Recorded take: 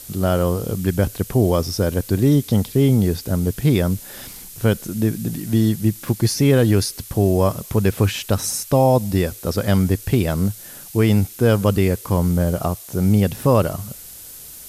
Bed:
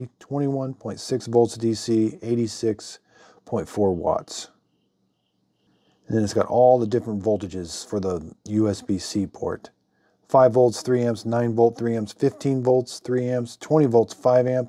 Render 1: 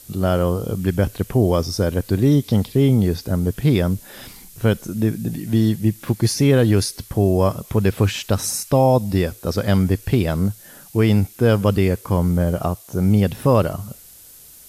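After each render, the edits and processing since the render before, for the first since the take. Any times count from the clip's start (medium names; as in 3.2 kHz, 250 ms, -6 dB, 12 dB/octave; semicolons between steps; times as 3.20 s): noise print and reduce 6 dB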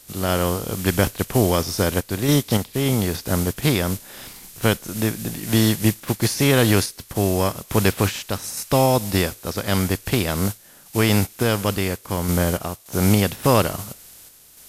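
spectral contrast reduction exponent 0.63; random-step tremolo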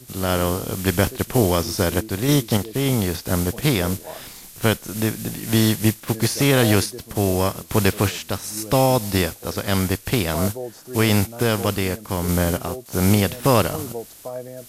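add bed -14.5 dB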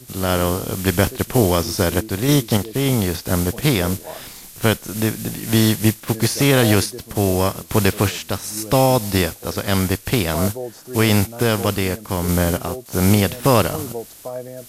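trim +2 dB; peak limiter -2 dBFS, peak gain reduction 1 dB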